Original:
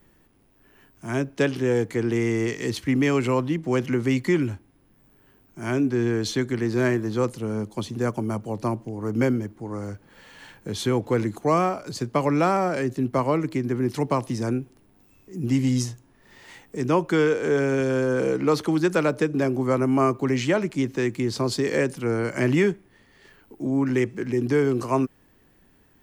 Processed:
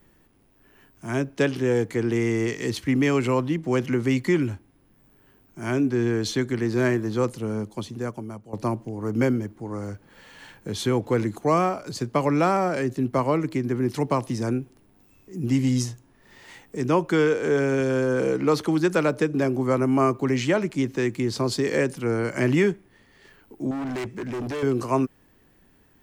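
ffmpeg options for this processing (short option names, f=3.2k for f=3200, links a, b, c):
-filter_complex "[0:a]asettb=1/sr,asplit=3[a][b][c];[a]atrim=end=23.714[d];[b]atrim=start=23.71:end=24.63,asetpts=PTS-STARTPTS,afade=t=in:d=0.004:c=qsin,afade=t=out:st=0.916:d=0.004:c=qsin,asoftclip=type=hard:threshold=-27.5dB[e];[c]atrim=start=24.626[f];[d][e]acrossfade=d=0.004:c1=hsin:c2=qsin[g];[g][f]acrossfade=d=0.004:c1=qsin:c2=hsin,asplit=2[h][i];[h]atrim=end=8.53,asetpts=PTS-STARTPTS,afade=t=out:st=7.49:d=1.04:silence=0.177828[j];[i]atrim=start=8.53,asetpts=PTS-STARTPTS,afade=t=in:d=0.004:c=hsin:silence=0.177828[k];[j][k]concat=n=2:v=0:a=1"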